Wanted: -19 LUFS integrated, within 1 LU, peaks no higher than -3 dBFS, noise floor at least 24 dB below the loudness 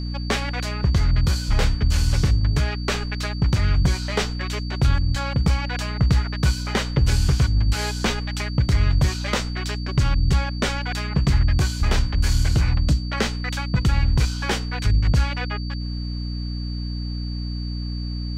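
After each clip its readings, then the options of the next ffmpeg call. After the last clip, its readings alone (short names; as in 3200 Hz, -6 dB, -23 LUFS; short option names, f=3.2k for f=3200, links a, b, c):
hum 60 Hz; harmonics up to 300 Hz; hum level -25 dBFS; steady tone 4600 Hz; tone level -38 dBFS; loudness -23.0 LUFS; peak -8.0 dBFS; loudness target -19.0 LUFS
-> -af "bandreject=f=60:t=h:w=6,bandreject=f=120:t=h:w=6,bandreject=f=180:t=h:w=6,bandreject=f=240:t=h:w=6,bandreject=f=300:t=h:w=6"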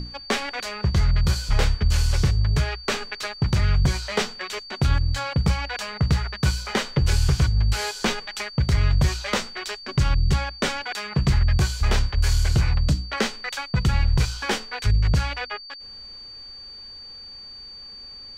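hum none; steady tone 4600 Hz; tone level -38 dBFS
-> -af "bandreject=f=4.6k:w=30"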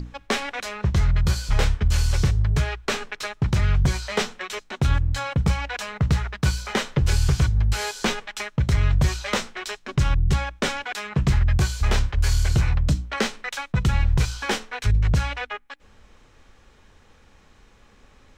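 steady tone none; loudness -24.0 LUFS; peak -9.0 dBFS; loudness target -19.0 LUFS
-> -af "volume=5dB"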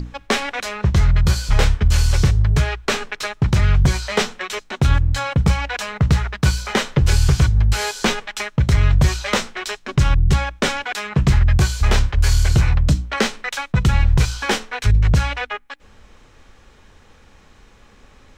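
loudness -19.0 LUFS; peak -4.0 dBFS; noise floor -50 dBFS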